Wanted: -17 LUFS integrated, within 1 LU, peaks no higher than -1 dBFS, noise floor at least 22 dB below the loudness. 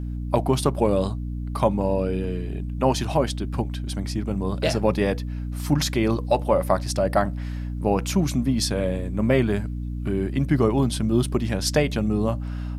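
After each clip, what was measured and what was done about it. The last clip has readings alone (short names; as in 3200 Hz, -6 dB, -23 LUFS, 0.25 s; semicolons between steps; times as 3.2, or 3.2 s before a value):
hum 60 Hz; harmonics up to 300 Hz; hum level -27 dBFS; loudness -24.0 LUFS; peak -4.5 dBFS; loudness target -17.0 LUFS
-> de-hum 60 Hz, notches 5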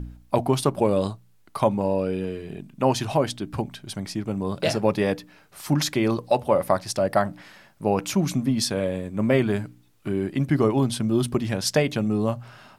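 hum none; loudness -24.5 LUFS; peak -5.5 dBFS; loudness target -17.0 LUFS
-> gain +7.5 dB; limiter -1 dBFS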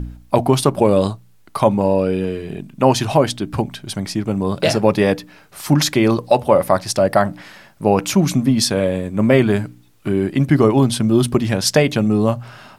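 loudness -17.0 LUFS; peak -1.0 dBFS; noise floor -49 dBFS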